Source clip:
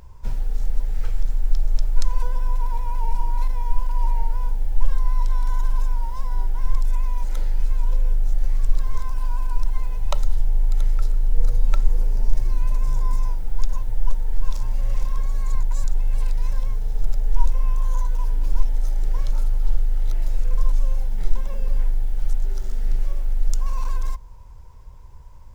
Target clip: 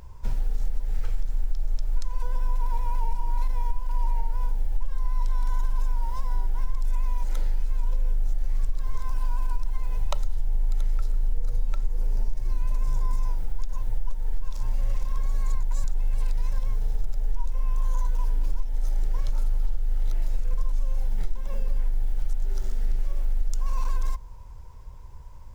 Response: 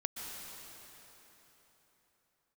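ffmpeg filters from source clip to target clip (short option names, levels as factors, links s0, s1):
-af "acompressor=threshold=0.126:ratio=6"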